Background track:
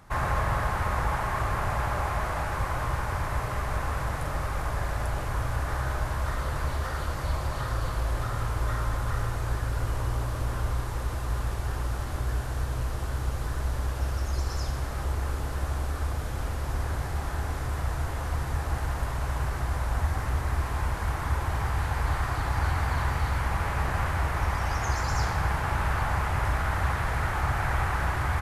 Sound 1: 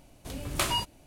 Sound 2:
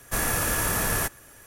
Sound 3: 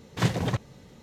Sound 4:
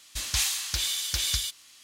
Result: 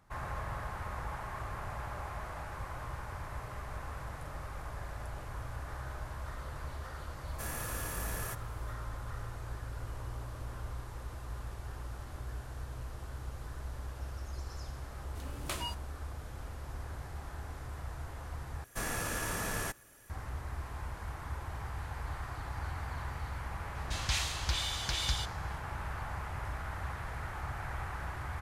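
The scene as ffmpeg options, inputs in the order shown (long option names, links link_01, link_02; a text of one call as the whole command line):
ffmpeg -i bed.wav -i cue0.wav -i cue1.wav -i cue2.wav -i cue3.wav -filter_complex "[2:a]asplit=2[link_01][link_02];[0:a]volume=-12.5dB[link_03];[link_02]acrossover=split=9300[link_04][link_05];[link_05]acompressor=threshold=-39dB:ratio=4:attack=1:release=60[link_06];[link_04][link_06]amix=inputs=2:normalize=0[link_07];[4:a]aemphasis=mode=reproduction:type=75fm[link_08];[link_03]asplit=2[link_09][link_10];[link_09]atrim=end=18.644[link_11];[link_07]atrim=end=1.46,asetpts=PTS-STARTPTS,volume=-9dB[link_12];[link_10]atrim=start=20.096[link_13];[link_01]atrim=end=1.46,asetpts=PTS-STARTPTS,volume=-15dB,afade=type=in:duration=0.004:curve=hsin,afade=type=out:start_time=1.456:duration=0.004:curve=hsin,adelay=7270[link_14];[1:a]atrim=end=1.06,asetpts=PTS-STARTPTS,volume=-10.5dB,afade=type=in:duration=0.004:curve=hsin,afade=type=out:start_time=1.056:duration=0.004:curve=hsin,adelay=14900[link_15];[link_08]atrim=end=1.83,asetpts=PTS-STARTPTS,volume=-1dB,afade=type=in:duration=0.004:curve=hsin,afade=type=out:start_time=1.826:duration=0.004:curve=hsin,adelay=23750[link_16];[link_11][link_12]acrossfade=duration=0.004:curve1=hsin:curve2=hsin[link_17];[link_17][link_13]acrossfade=duration=0.004:curve1=hsin:curve2=hsin[link_18];[link_18][link_14][link_15][link_16]amix=inputs=4:normalize=0" out.wav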